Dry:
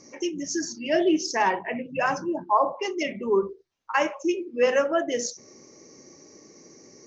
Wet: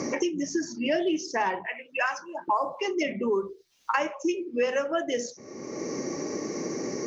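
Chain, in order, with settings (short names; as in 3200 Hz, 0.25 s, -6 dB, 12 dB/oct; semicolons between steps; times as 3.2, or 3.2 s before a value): 1.66–2.48 HPF 1200 Hz 12 dB/oct; three-band squash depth 100%; gain -3 dB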